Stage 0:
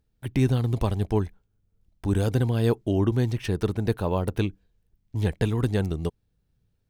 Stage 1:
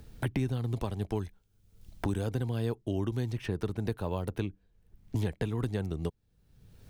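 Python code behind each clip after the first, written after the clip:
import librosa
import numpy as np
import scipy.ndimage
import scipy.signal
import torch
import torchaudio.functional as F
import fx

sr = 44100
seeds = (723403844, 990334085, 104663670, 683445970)

y = fx.band_squash(x, sr, depth_pct=100)
y = F.gain(torch.from_numpy(y), -8.5).numpy()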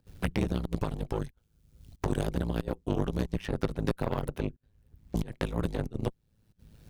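y = fx.volume_shaper(x, sr, bpm=92, per_beat=1, depth_db=-24, release_ms=65.0, shape='slow start')
y = y * np.sin(2.0 * np.pi * 54.0 * np.arange(len(y)) / sr)
y = fx.cheby_harmonics(y, sr, harmonics=(6,), levels_db=(-14,), full_scale_db=-17.5)
y = F.gain(torch.from_numpy(y), 3.5).numpy()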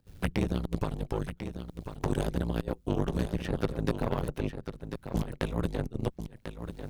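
y = x + 10.0 ** (-9.0 / 20.0) * np.pad(x, (int(1044 * sr / 1000.0), 0))[:len(x)]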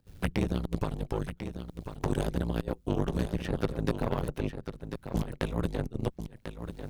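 y = x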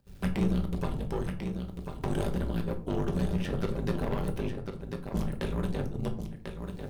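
y = 10.0 ** (-21.0 / 20.0) * np.tanh(x / 10.0 ** (-21.0 / 20.0))
y = fx.quant_float(y, sr, bits=6)
y = fx.room_shoebox(y, sr, seeds[0], volume_m3=400.0, walls='furnished', distance_m=1.2)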